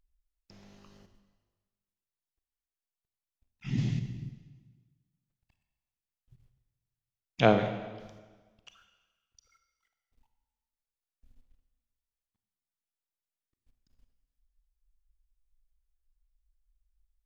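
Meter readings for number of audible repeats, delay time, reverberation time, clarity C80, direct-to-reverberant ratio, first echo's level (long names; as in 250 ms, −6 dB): no echo audible, no echo audible, 1.4 s, 10.5 dB, 8.0 dB, no echo audible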